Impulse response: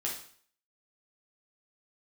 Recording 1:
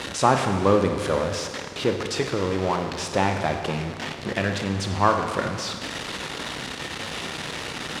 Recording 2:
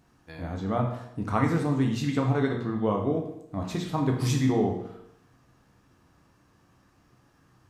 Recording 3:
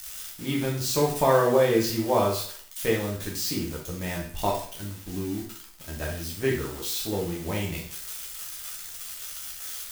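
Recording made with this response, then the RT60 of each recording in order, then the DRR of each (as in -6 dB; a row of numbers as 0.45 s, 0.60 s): 3; 1.8 s, 0.80 s, 0.50 s; 5.0 dB, 1.0 dB, -3.5 dB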